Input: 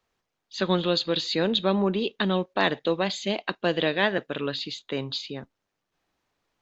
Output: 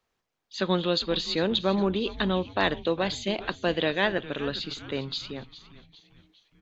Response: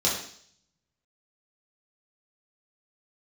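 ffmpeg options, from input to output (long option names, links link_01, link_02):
-filter_complex "[0:a]asplit=5[link_01][link_02][link_03][link_04][link_05];[link_02]adelay=406,afreqshift=-150,volume=-15.5dB[link_06];[link_03]adelay=812,afreqshift=-300,volume=-21.9dB[link_07];[link_04]adelay=1218,afreqshift=-450,volume=-28.3dB[link_08];[link_05]adelay=1624,afreqshift=-600,volume=-34.6dB[link_09];[link_01][link_06][link_07][link_08][link_09]amix=inputs=5:normalize=0,volume=-1.5dB"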